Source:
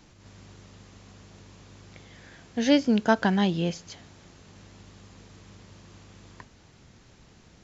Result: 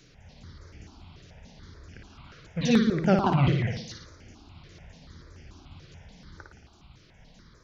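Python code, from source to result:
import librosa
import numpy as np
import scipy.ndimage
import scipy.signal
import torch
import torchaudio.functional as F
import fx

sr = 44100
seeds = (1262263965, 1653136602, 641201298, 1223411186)

y = fx.pitch_ramps(x, sr, semitones=-9.0, every_ms=204)
y = fx.room_flutter(y, sr, wall_m=9.7, rt60_s=0.7)
y = fx.phaser_held(y, sr, hz=6.9, low_hz=230.0, high_hz=3900.0)
y = y * librosa.db_to_amplitude(2.5)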